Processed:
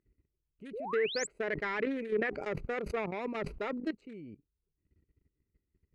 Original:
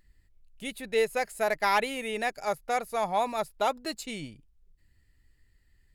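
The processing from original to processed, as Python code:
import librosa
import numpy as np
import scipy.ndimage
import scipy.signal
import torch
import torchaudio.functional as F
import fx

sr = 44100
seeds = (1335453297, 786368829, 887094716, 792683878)

y = fx.wiener(x, sr, points=25)
y = scipy.signal.sosfilt(scipy.signal.butter(2, 62.0, 'highpass', fs=sr, output='sos'), y)
y = fx.low_shelf(y, sr, hz=170.0, db=2.0)
y = fx.level_steps(y, sr, step_db=17)
y = 10.0 ** (-30.0 / 20.0) * np.tanh(y / 10.0 ** (-30.0 / 20.0))
y = fx.curve_eq(y, sr, hz=(130.0, 410.0, 750.0, 1900.0, 3200.0, 12000.0), db=(0, 10, -7, 11, 0, -6))
y = fx.env_lowpass_down(y, sr, base_hz=1700.0, full_db=-26.5)
y = fx.spec_paint(y, sr, seeds[0], shape='rise', start_s=0.73, length_s=0.54, low_hz=380.0, high_hz=8300.0, level_db=-39.0)
y = fx.sustainer(y, sr, db_per_s=46.0, at=(1.4, 3.85))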